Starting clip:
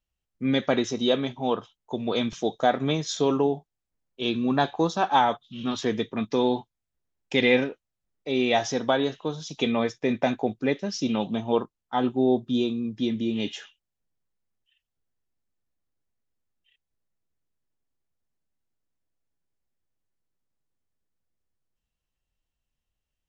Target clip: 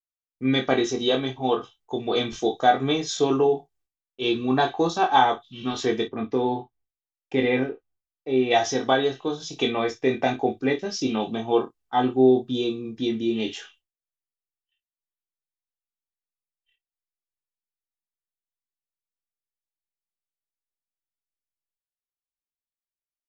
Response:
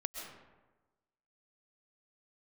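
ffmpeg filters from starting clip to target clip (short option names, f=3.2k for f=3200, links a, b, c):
-filter_complex "[0:a]aecho=1:1:2.6:0.45,aecho=1:1:23|54:0.596|0.2,agate=range=-33dB:threshold=-56dB:ratio=3:detection=peak,asplit=3[a][b][c];[a]afade=t=out:st=6.07:d=0.02[d];[b]lowpass=f=1.1k:p=1,afade=t=in:st=6.07:d=0.02,afade=t=out:st=8.5:d=0.02[e];[c]afade=t=in:st=8.5:d=0.02[f];[d][e][f]amix=inputs=3:normalize=0"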